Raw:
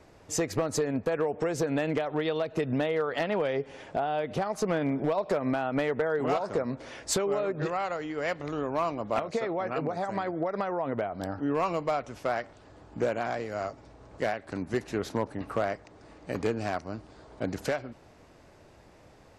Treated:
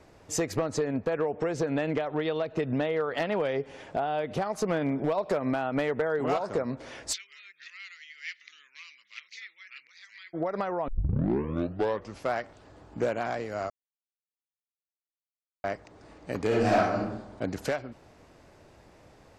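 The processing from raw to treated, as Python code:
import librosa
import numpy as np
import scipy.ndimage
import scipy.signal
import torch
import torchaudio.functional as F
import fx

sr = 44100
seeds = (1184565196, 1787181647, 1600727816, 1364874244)

y = fx.air_absorb(x, sr, metres=68.0, at=(0.59, 3.17))
y = fx.ellip_bandpass(y, sr, low_hz=2000.0, high_hz=6100.0, order=3, stop_db=50, at=(7.12, 10.33), fade=0.02)
y = fx.reverb_throw(y, sr, start_s=16.47, length_s=0.51, rt60_s=0.87, drr_db=-7.5)
y = fx.edit(y, sr, fx.tape_start(start_s=10.88, length_s=1.38),
    fx.silence(start_s=13.7, length_s=1.94), tone=tone)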